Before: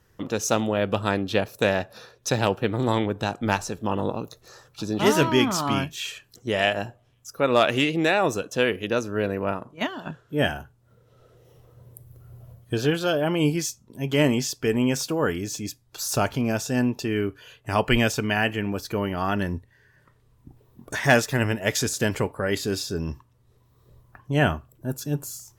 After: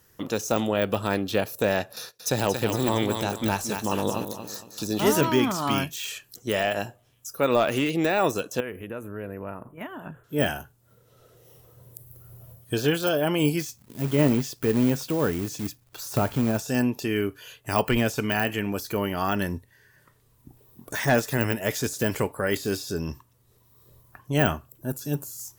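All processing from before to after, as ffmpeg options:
-filter_complex "[0:a]asettb=1/sr,asplit=3[a][b][c];[a]atrim=end=1.964[d];[b]atrim=start=1.96:end=5.21,asetpts=PTS-STARTPTS,afade=t=in:d=0.004:c=qsin,afade=t=out:st=3.246:d=0.004:c=qsin,agate=range=-18dB:threshold=-50dB:ratio=16:release=100:detection=peak,highshelf=f=4.1k:g=11,aecho=1:1:230|460|690|920:0.355|0.114|0.0363|0.0116,atrim=end_sample=143325[e];[c]atrim=start=5.206[f];[d][e]acrossfade=d=0.004:c1=hsin:c2=qsin[g];[g][f]acrossfade=d=0.004:c1=qsin:c2=hsin,asettb=1/sr,asplit=3[h][i][j];[h]atrim=end=8.604[k];[i]atrim=start=8.6:end=10.24,asetpts=PTS-STARTPTS,afade=t=in:d=0.004:c=qsin,afade=t=out:st=1.636:d=0.004:c=qsin,lowshelf=f=100:g=11,acompressor=threshold=-35dB:ratio=2.5:attack=3.2:release=140:knee=1:detection=peak,asuperstop=centerf=5000:order=4:qfactor=0.64[l];[j]atrim=start=10.236[m];[k][l]acrossfade=d=0.004:c1=hsin:c2=qsin[n];[n][m]acrossfade=d=0.004:c1=qsin:c2=hsin,asettb=1/sr,asplit=3[o][p][q];[o]atrim=end=13.614[r];[p]atrim=start=13.61:end=16.58,asetpts=PTS-STARTPTS,afade=t=in:d=0.004:c=qsin,afade=t=out:st=2.966:d=0.004:c=qsin,bass=f=250:g=4,treble=f=4k:g=-14,acrusher=bits=3:mode=log:mix=0:aa=0.000001[s];[q]atrim=start=16.576[t];[r][s]acrossfade=d=0.004:c1=hsin:c2=qsin[u];[u][t]acrossfade=d=0.004:c1=qsin:c2=hsin,lowshelf=f=95:g=-6,deesser=0.9,aemphasis=mode=production:type=50kf"

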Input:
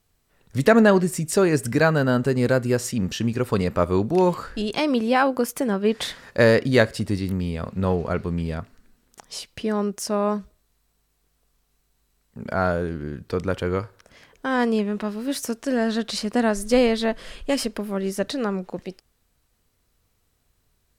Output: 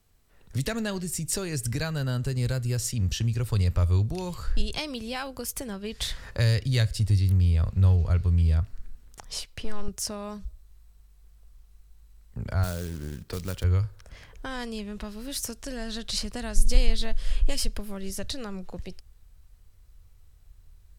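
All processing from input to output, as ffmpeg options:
-filter_complex "[0:a]asettb=1/sr,asplit=3[a][b][c];[a]atrim=end=9.404[d];[b]atrim=start=9.4:end=9.88,asetpts=PTS-STARTPTS,afade=t=in:d=0.004:c=qsin,afade=t=out:st=0.476:d=0.004:c=qsin,equalizer=f=64:t=o:w=2.5:g=-8.5,aeval=exprs='(tanh(10*val(0)+0.55)-tanh(0.55))/10':c=same[e];[c]atrim=start=9.876[f];[d][e]acrossfade=d=0.004:c1=hsin:c2=qsin[g];[g][f]acrossfade=d=0.004:c1=qsin:c2=hsin,asettb=1/sr,asplit=3[h][i][j];[h]atrim=end=12.634[k];[i]atrim=start=12.63:end=13.64,asetpts=PTS-STARTPTS,afade=t=in:d=0.004:c=qsin,afade=t=out:st=1.006:d=0.004:c=qsin,lowshelf=f=140:t=q:w=1.5:g=-10,acrusher=bits=4:mode=log:mix=0:aa=0.000001[l];[j]atrim=start=13.636[m];[k][l]acrossfade=d=0.004:c1=hsin:c2=qsin[n];[n][m]acrossfade=d=0.004:c1=qsin:c2=hsin,lowshelf=f=120:g=4.5,acrossover=split=120|3000[o][p][q];[p]acompressor=threshold=-37dB:ratio=3[r];[o][r][q]amix=inputs=3:normalize=0,asubboost=boost=6:cutoff=90"

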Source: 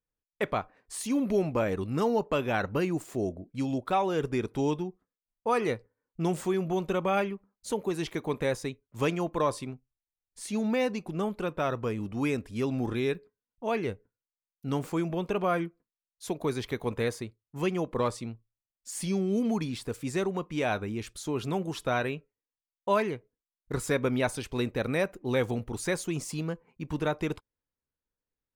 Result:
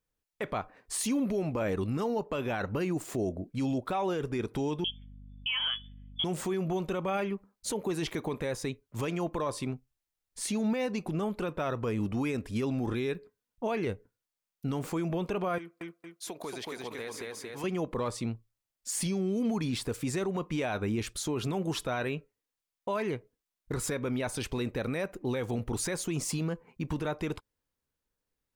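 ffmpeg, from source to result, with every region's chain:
-filter_complex "[0:a]asettb=1/sr,asplit=3[a][b][c];[a]atrim=end=4.844[d];[b]atrim=start=4.84:end=6.24,asetpts=PTS-STARTPTS,afade=t=in:d=0.004:c=qsin,afade=t=out:st=1.396:d=0.004:c=qsin,lowpass=f=3k:t=q:w=0.5098,lowpass=f=3k:t=q:w=0.6013,lowpass=f=3k:t=q:w=0.9,lowpass=f=3k:t=q:w=2.563,afreqshift=-3500,aeval=exprs='val(0)+0.00224*(sin(2*PI*50*n/s)+sin(2*PI*2*50*n/s)/2+sin(2*PI*3*50*n/s)/3+sin(2*PI*4*50*n/s)/4+sin(2*PI*5*50*n/s)/5)':c=same[e];[c]atrim=start=6.236[f];[d][e]acrossfade=d=0.004:c1=hsin:c2=qsin[g];[g][f]acrossfade=d=0.004:c1=qsin:c2=hsin,asettb=1/sr,asplit=3[h][i][j];[h]atrim=end=15.584[k];[i]atrim=start=15.58:end=17.64,asetpts=PTS-STARTPTS,afade=t=in:d=0.004:c=qsin,afade=t=out:st=2.056:d=0.004:c=qsin,highpass=f=610:p=1,aecho=1:1:229|458|687|916:0.631|0.202|0.0646|0.0207,atrim=end_sample=90846,acompressor=threshold=-42dB:ratio=4:attack=3.2:release=140:knee=1:detection=peak[l];[j]atrim=start=17.636[m];[k][l]acrossfade=d=0.004:c1=hsin:c2=qsin[n];[n][m]acrossfade=d=0.004:c1=qsin:c2=hsin,acompressor=threshold=-31dB:ratio=5,alimiter=level_in=4.5dB:limit=-24dB:level=0:latency=1:release=12,volume=-4.5dB,volume=5.5dB"

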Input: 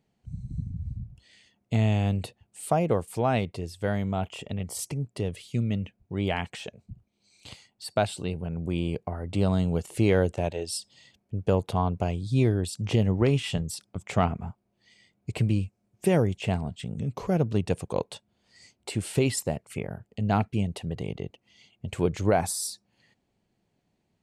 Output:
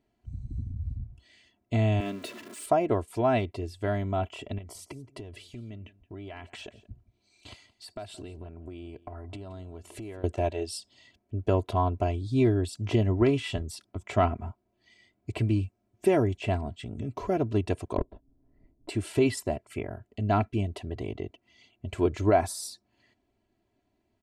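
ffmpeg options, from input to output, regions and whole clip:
-filter_complex "[0:a]asettb=1/sr,asplit=3[a][b][c];[a]atrim=end=2.004[d];[b]atrim=start=2:end=2.66,asetpts=PTS-STARTPTS,afade=t=in:d=0.004:c=qsin,afade=t=out:st=0.656:d=0.004:c=qsin,aeval=exprs='val(0)+0.5*0.0178*sgn(val(0))':c=same,highpass=f=200:w=0.5412,highpass=f=200:w=1.3066,equalizer=f=800:t=o:w=0.31:g=-14.5[e];[c]atrim=start=2.656[f];[d][e]acrossfade=d=0.004:c1=hsin:c2=qsin[g];[g][f]acrossfade=d=0.004:c1=qsin:c2=hsin,asettb=1/sr,asplit=3[h][i][j];[h]atrim=end=4.584[k];[i]atrim=start=4.58:end=10.24,asetpts=PTS-STARTPTS,afade=t=in:d=0.004:c=qsin,afade=t=out:st=5.656:d=0.004:c=qsin,acompressor=threshold=-36dB:ratio=10:attack=3.2:release=140:knee=1:detection=peak,aecho=1:1:172:0.106,atrim=end_sample=249606[l];[j]atrim=start=10.236[m];[k][l]acrossfade=d=0.004:c1=hsin:c2=qsin[n];[n][m]acrossfade=d=0.004:c1=qsin:c2=hsin,asettb=1/sr,asplit=3[o][p][q];[o]atrim=end=17.974[r];[p]atrim=start=17.97:end=18.89,asetpts=PTS-STARTPTS,afade=t=in:d=0.004:c=qsin,afade=t=out:st=0.916:d=0.004:c=qsin,aemphasis=mode=reproduction:type=riaa,aeval=exprs='val(0)*sin(2*PI*64*n/s)':c=same,adynamicsmooth=sensitivity=1.5:basefreq=820[s];[q]atrim=start=18.886[t];[r][s]acrossfade=d=0.004:c1=hsin:c2=qsin[u];[u][t]acrossfade=d=0.004:c1=qsin:c2=hsin,highshelf=f=4.1k:g=-9,aecho=1:1:3:0.77,volume=-1dB"

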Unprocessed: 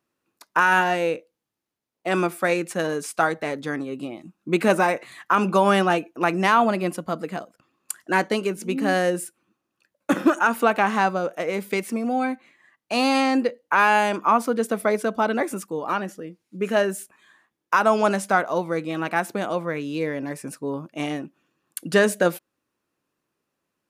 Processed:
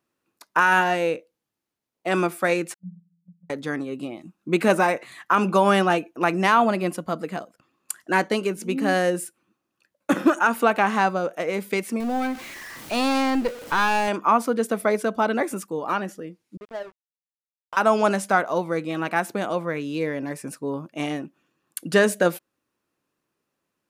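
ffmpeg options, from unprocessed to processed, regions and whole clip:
-filter_complex "[0:a]asettb=1/sr,asplit=3[a][b][c];[a]atrim=end=2.744[d];[b]atrim=start=2.74:end=3.5,asetpts=PTS-STARTPTS,afade=t=in:d=0.004:c=qsin,afade=t=out:st=0.756:d=0.004:c=qsin,asuperpass=centerf=180:order=20:qfactor=7.9,agate=range=-9dB:threshold=-49dB:ratio=16:release=100:detection=peak[e];[c]atrim=start=3.496[f];[d][e]acrossfade=d=0.004:c1=hsin:c2=qsin[g];[g][f]acrossfade=d=0.004:c1=qsin:c2=hsin,asettb=1/sr,asplit=3[h][i][j];[h]atrim=end=12.004[k];[i]atrim=start=12:end=14.08,asetpts=PTS-STARTPTS,afade=t=in:d=0.004:c=qsin,afade=t=out:st=2.076:d=0.004:c=qsin,aeval=exprs='val(0)+0.5*0.0266*sgn(val(0))':c=same,aeval=exprs='(tanh(5.01*val(0)+0.5)-tanh(0.5))/5.01':c=same[l];[j]atrim=start=14.076[m];[k][l]acrossfade=d=0.004:c1=hsin:c2=qsin[n];[n][m]acrossfade=d=0.004:c1=qsin:c2=hsin,asettb=1/sr,asplit=3[o][p][q];[o]atrim=end=16.574[r];[p]atrim=start=16.57:end=17.77,asetpts=PTS-STARTPTS,afade=t=in:d=0.004:c=qsin,afade=t=out:st=1.196:d=0.004:c=qsin,acompressor=threshold=-28dB:ratio=2.5:attack=3.2:release=140:knee=1:detection=peak,bandpass=f=680:t=q:w=1.4,aeval=exprs='sgn(val(0))*max(abs(val(0))-0.0133,0)':c=same[s];[q]atrim=start=17.766[t];[r][s]acrossfade=d=0.004:c1=hsin:c2=qsin[u];[u][t]acrossfade=d=0.004:c1=qsin:c2=hsin"

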